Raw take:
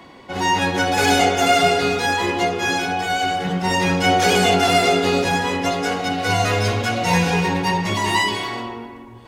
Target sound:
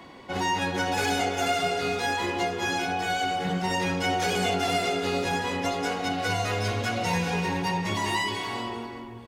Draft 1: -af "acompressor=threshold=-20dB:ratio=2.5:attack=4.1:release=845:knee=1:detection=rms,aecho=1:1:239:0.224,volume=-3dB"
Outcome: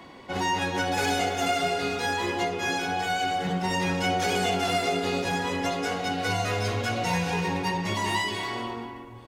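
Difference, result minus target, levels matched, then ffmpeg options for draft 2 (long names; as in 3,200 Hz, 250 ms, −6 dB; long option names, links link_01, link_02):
echo 153 ms early
-af "acompressor=threshold=-20dB:ratio=2.5:attack=4.1:release=845:knee=1:detection=rms,aecho=1:1:392:0.224,volume=-3dB"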